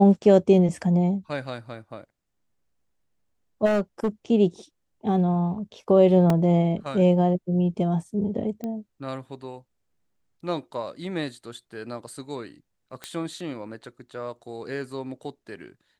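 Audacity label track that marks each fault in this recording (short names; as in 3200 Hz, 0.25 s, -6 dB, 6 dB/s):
3.650000	4.080000	clipped -19 dBFS
6.300000	6.300000	gap 2.1 ms
8.640000	8.640000	pop -20 dBFS
13.040000	13.040000	pop -18 dBFS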